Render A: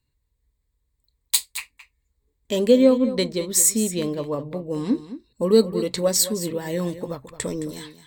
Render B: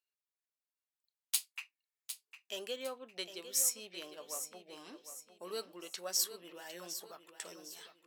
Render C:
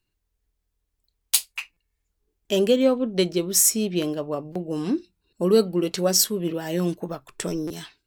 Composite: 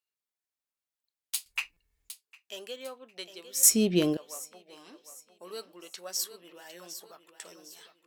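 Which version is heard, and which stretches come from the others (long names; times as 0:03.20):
B
0:01.46–0:02.10: punch in from C
0:03.63–0:04.17: punch in from C
not used: A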